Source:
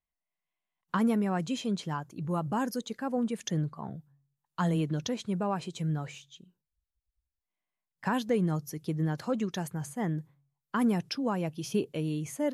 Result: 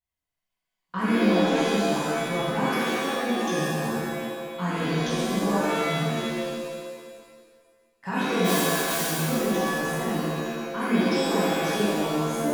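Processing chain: 8.44–9.01 spectral whitening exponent 0.1; shimmer reverb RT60 1.7 s, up +7 st, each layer -2 dB, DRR -10.5 dB; gain -7 dB

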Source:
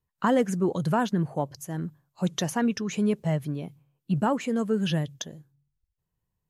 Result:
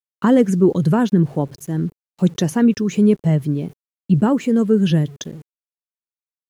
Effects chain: sample gate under -48.5 dBFS; gate with hold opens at -44 dBFS; resonant low shelf 510 Hz +6.5 dB, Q 1.5; gain +3.5 dB

